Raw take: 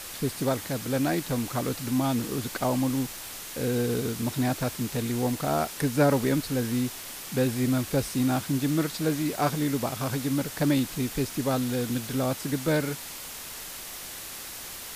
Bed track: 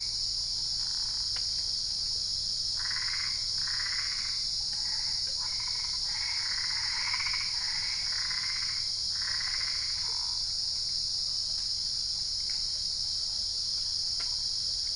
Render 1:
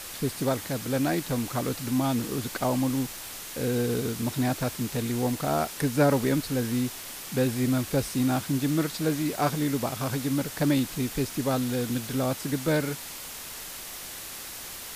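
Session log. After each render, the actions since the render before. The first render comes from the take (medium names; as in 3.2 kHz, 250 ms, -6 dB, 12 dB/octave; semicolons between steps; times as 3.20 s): no audible change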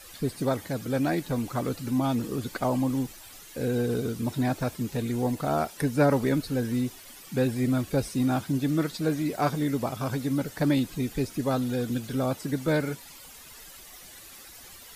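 noise reduction 12 dB, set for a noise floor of -40 dBFS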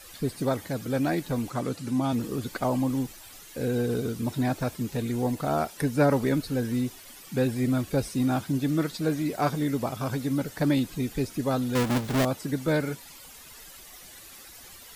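1.50–2.13 s: Chebyshev band-pass 130–10000 Hz; 11.75–12.25 s: square wave that keeps the level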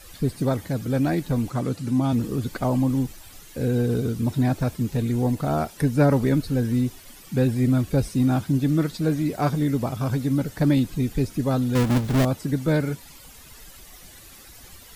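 bass shelf 210 Hz +10.5 dB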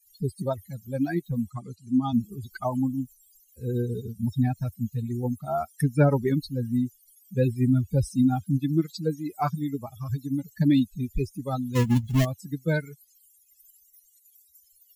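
expander on every frequency bin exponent 3; in parallel at -2 dB: peak limiter -20 dBFS, peak gain reduction 9.5 dB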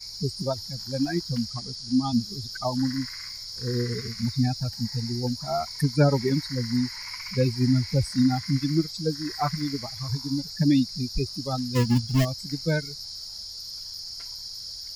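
add bed track -6 dB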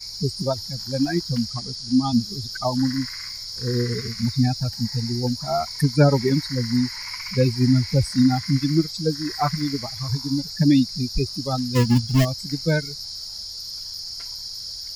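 trim +4 dB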